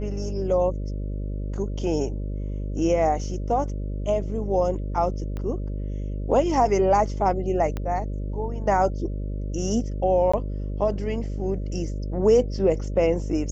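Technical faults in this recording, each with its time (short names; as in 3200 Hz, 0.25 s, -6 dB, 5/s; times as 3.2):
buzz 50 Hz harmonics 12 -29 dBFS
5.37 pop -21 dBFS
7.77 pop -17 dBFS
10.32–10.34 gap 15 ms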